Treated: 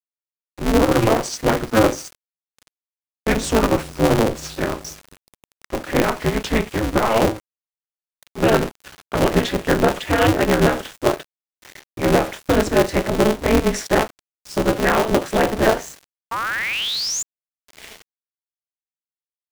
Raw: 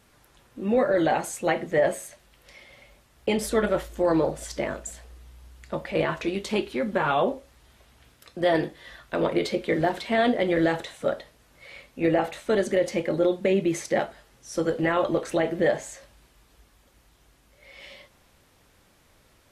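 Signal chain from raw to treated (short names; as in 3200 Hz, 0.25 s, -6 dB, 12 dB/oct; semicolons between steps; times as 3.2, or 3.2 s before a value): gliding pitch shift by -6 st ending unshifted; painted sound rise, 16.31–17.23, 1000–7300 Hz -31 dBFS; sample gate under -42 dBFS; polarity switched at an audio rate 110 Hz; gain +7.5 dB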